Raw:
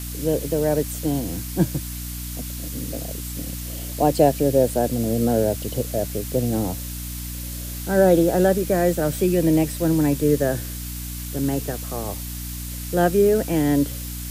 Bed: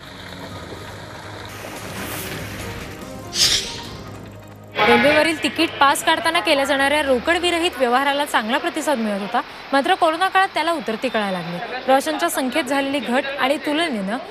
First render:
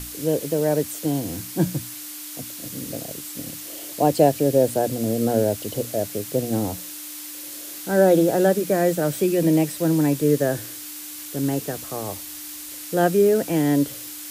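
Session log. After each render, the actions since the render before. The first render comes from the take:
mains-hum notches 60/120/180/240 Hz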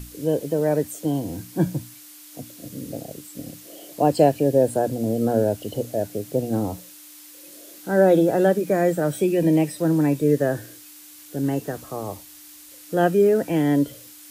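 noise reduction from a noise print 9 dB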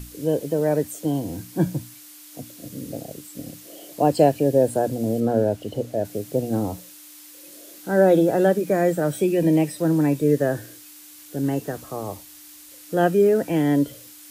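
0:05.20–0:06.05: high-shelf EQ 5,500 Hz −9 dB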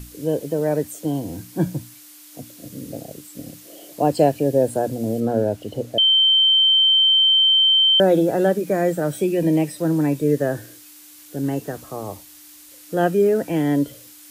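0:05.98–0:08.00: beep over 3,110 Hz −12 dBFS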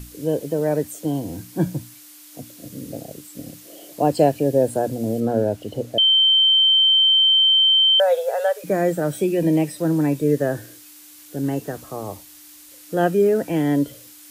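0:07.15–0:08.64: linear-phase brick-wall high-pass 430 Hz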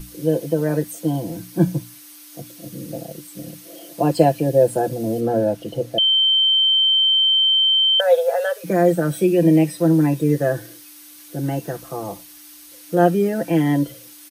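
notch filter 7,300 Hz, Q 7.7
comb filter 5.9 ms, depth 78%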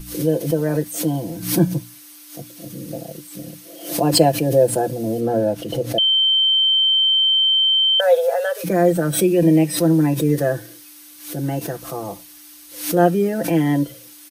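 background raised ahead of every attack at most 100 dB per second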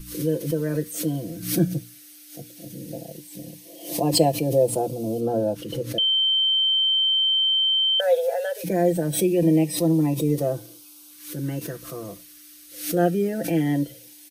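auto-filter notch saw up 0.18 Hz 700–1,900 Hz
tuned comb filter 470 Hz, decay 0.35 s, harmonics all, mix 40%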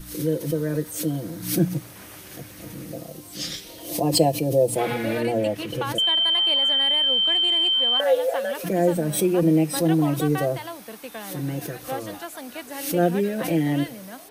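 mix in bed −16 dB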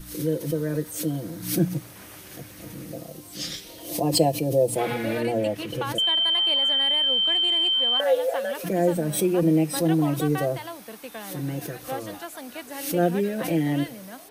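level −1.5 dB

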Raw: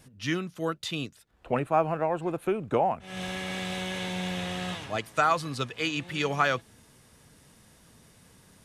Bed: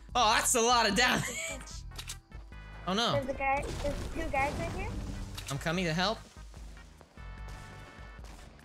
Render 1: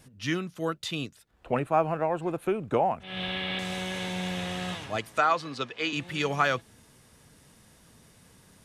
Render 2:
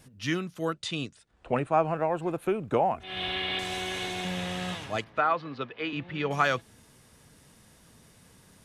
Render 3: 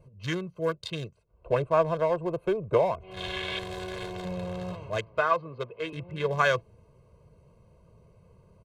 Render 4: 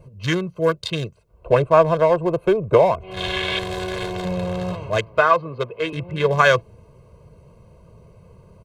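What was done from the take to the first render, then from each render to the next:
0:03.03–0:03.59: high shelf with overshoot 4,800 Hz −12 dB, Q 3; 0:05.18–0:05.93: three-way crossover with the lows and the highs turned down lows −13 dB, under 200 Hz, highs −17 dB, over 6,300 Hz
0:00.73–0:01.97: Butterworth low-pass 10,000 Hz 96 dB per octave; 0:02.94–0:04.25: comb filter 2.8 ms; 0:05.04–0:06.31: high-frequency loss of the air 320 metres
adaptive Wiener filter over 25 samples; comb filter 1.9 ms, depth 83%
level +9.5 dB; brickwall limiter −3 dBFS, peak gain reduction 2 dB

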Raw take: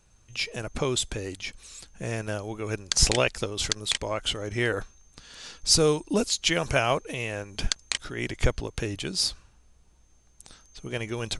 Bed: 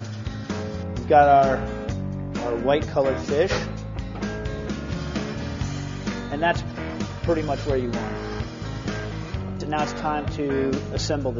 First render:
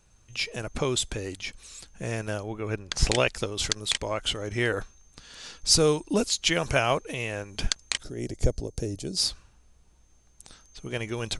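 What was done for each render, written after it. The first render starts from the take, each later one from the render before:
0:02.43–0:03.09: bass and treble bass +1 dB, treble −11 dB
0:08.03–0:09.17: flat-topped bell 1,800 Hz −15.5 dB 2.3 octaves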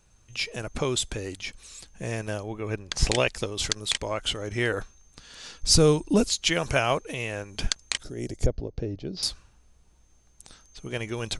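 0:01.73–0:03.65: notch filter 1,400 Hz
0:05.61–0:06.34: low-shelf EQ 240 Hz +9 dB
0:08.46–0:09.23: Bessel low-pass filter 2,800 Hz, order 8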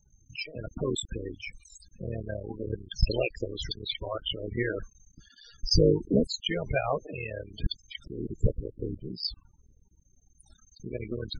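sub-harmonics by changed cycles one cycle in 3, muted
spectral peaks only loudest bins 16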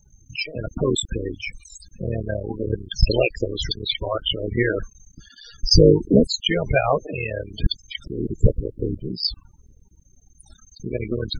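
level +9 dB
brickwall limiter −2 dBFS, peak gain reduction 2 dB

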